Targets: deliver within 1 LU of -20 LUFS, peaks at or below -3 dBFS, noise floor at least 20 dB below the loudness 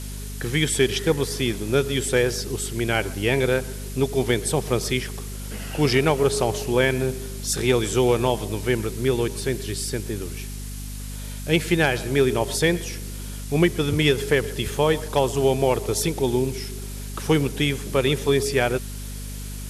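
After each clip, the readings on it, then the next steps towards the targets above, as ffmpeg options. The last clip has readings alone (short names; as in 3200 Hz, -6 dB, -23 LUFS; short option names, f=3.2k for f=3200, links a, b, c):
hum 50 Hz; harmonics up to 250 Hz; hum level -31 dBFS; noise floor -33 dBFS; noise floor target -43 dBFS; loudness -23.0 LUFS; peak -6.5 dBFS; loudness target -20.0 LUFS
-> -af "bandreject=f=50:t=h:w=4,bandreject=f=100:t=h:w=4,bandreject=f=150:t=h:w=4,bandreject=f=200:t=h:w=4,bandreject=f=250:t=h:w=4"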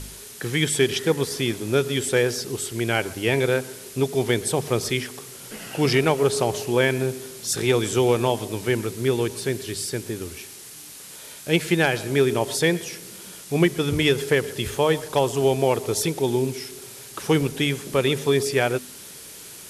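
hum none; noise floor -42 dBFS; noise floor target -43 dBFS
-> -af "afftdn=nr=6:nf=-42"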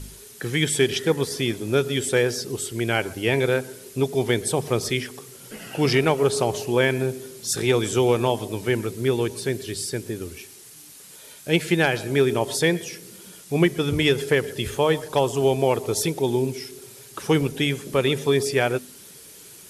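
noise floor -45 dBFS; loudness -23.0 LUFS; peak -6.5 dBFS; loudness target -20.0 LUFS
-> -af "volume=3dB"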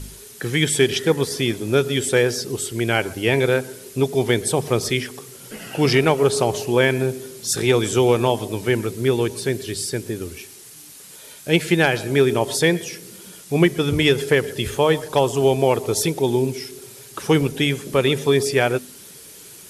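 loudness -20.0 LUFS; peak -3.5 dBFS; noise floor -42 dBFS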